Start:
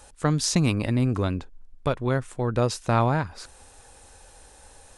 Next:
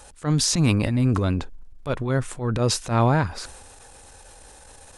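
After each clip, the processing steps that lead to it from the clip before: transient shaper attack -12 dB, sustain +5 dB; trim +3.5 dB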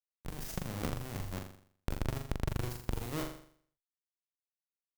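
Schmitt trigger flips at -20 dBFS; Chebyshev shaper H 3 -6 dB, 6 -29 dB, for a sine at -18 dBFS; flutter echo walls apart 7.1 m, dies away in 0.56 s; trim -3.5 dB

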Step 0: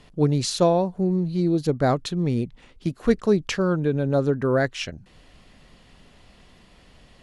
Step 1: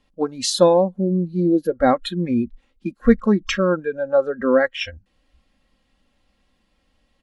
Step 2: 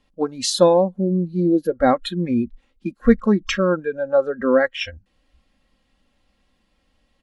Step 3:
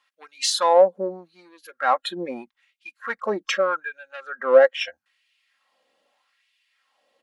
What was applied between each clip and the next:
spectral noise reduction 19 dB; comb 3.7 ms, depth 58%; trim +4 dB
no audible change
in parallel at -4 dB: saturation -16 dBFS, distortion -9 dB; on the sum: LFO high-pass sine 0.8 Hz 490–2500 Hz; trim -5 dB

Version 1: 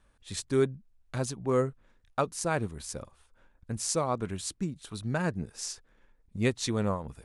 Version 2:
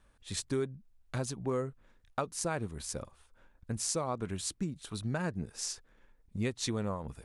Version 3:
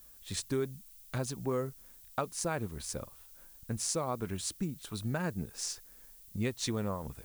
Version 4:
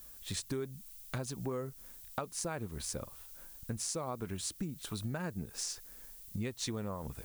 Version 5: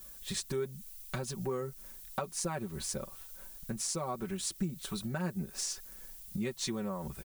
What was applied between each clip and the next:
compression 4:1, threshold -30 dBFS, peak gain reduction 9 dB
added noise violet -56 dBFS
compression 3:1, threshold -40 dBFS, peak gain reduction 9.5 dB; trim +3.5 dB
comb 5.3 ms, depth 83%

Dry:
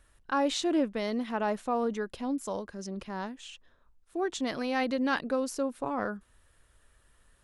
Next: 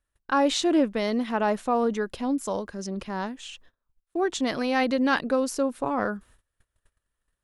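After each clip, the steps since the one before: gate -57 dBFS, range -24 dB; trim +5.5 dB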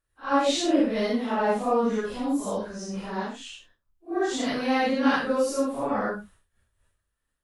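phase randomisation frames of 200 ms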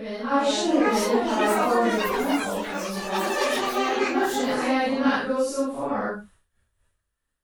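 reverse echo 901 ms -6.5 dB; ever faster or slower copies 636 ms, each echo +7 st, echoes 3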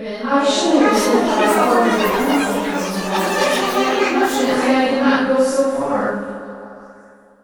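repeats whose band climbs or falls 169 ms, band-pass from 150 Hz, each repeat 0.7 oct, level -10.5 dB; on a send at -6.5 dB: reverberation RT60 3.0 s, pre-delay 3 ms; on the sum: trim +6.5 dB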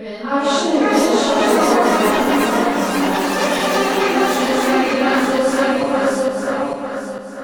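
backward echo that repeats 449 ms, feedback 55%, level -1 dB; trim -2.5 dB

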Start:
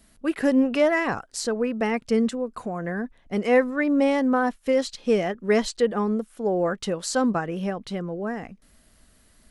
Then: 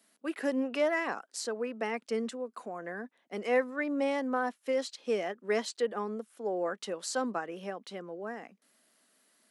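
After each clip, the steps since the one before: Bessel high-pass 340 Hz, order 8; trim -7 dB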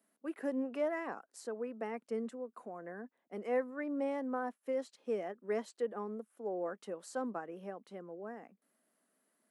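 peaking EQ 4.4 kHz -13.5 dB 2.3 oct; trim -4.5 dB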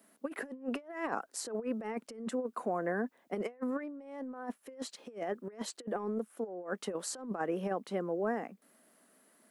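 compressor with a negative ratio -43 dBFS, ratio -0.5; trim +7 dB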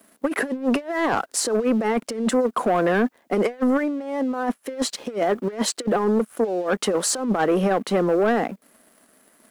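in parallel at -2.5 dB: peak limiter -28.5 dBFS, peak gain reduction 9 dB; on the sum: waveshaping leveller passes 2; trim +5.5 dB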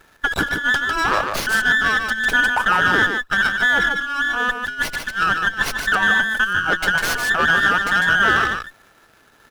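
every band turned upside down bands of 2 kHz; delay 150 ms -5.5 dB; sliding maximum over 5 samples; trim +3 dB

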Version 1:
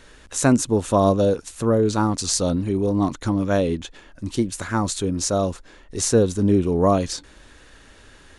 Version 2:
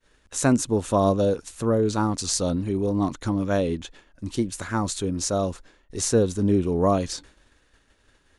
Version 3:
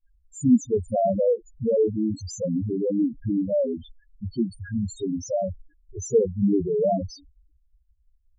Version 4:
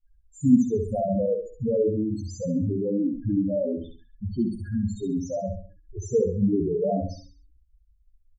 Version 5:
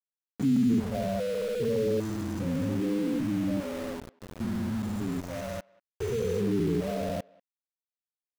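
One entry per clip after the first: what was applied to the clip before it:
expander -39 dBFS; trim -3 dB
loudest bins only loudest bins 2; trim +5 dB
bass shelf 460 Hz +9.5 dB; on a send: feedback delay 67 ms, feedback 36%, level -5.5 dB; on the sum: trim -8 dB
spectrogram pixelated in time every 400 ms; small samples zeroed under -35.5 dBFS; speakerphone echo 190 ms, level -25 dB

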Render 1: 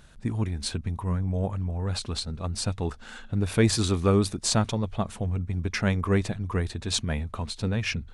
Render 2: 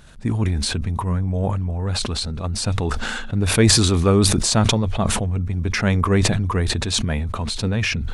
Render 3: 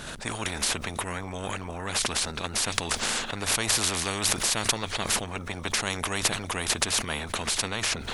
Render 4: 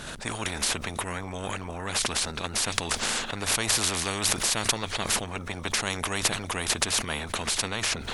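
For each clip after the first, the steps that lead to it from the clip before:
decay stretcher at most 22 dB/s; trim +5 dB
spectrum-flattening compressor 4:1
MP3 320 kbps 48 kHz

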